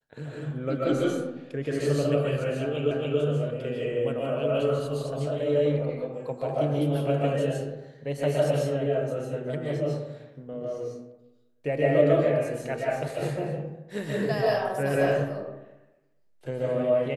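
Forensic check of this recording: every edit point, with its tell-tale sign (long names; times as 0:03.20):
0:02.91: the same again, the last 0.28 s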